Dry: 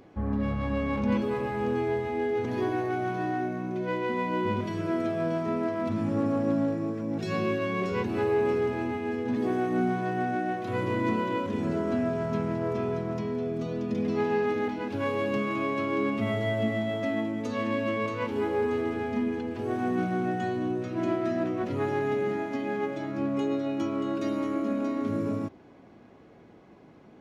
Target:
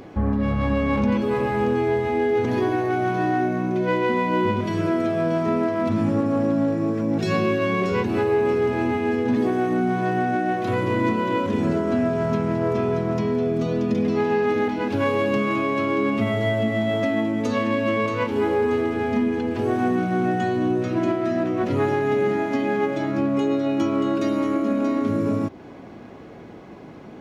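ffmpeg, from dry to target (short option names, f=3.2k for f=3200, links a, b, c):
-filter_complex "[0:a]asplit=2[a][b];[b]acompressor=threshold=-37dB:ratio=6,volume=1dB[c];[a][c]amix=inputs=2:normalize=0,alimiter=limit=-18dB:level=0:latency=1:release=338,volume=5.5dB"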